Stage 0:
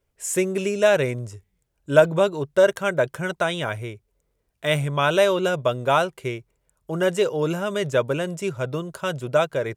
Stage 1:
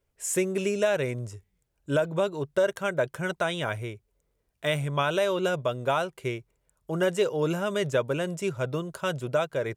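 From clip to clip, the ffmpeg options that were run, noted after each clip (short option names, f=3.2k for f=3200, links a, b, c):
-af "alimiter=limit=-12dB:level=0:latency=1:release=317,volume=-2.5dB"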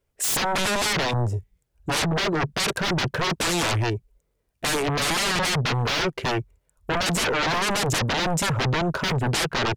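-af "aeval=exprs='0.2*sin(PI/2*10*val(0)/0.2)':c=same,afwtdn=0.0398,volume=-6dB"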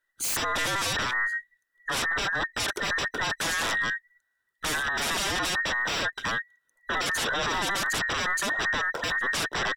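-af "afftfilt=real='real(if(between(b,1,1012),(2*floor((b-1)/92)+1)*92-b,b),0)':imag='imag(if(between(b,1,1012),(2*floor((b-1)/92)+1)*92-b,b),0)*if(between(b,1,1012),-1,1)':win_size=2048:overlap=0.75,volume=-4.5dB"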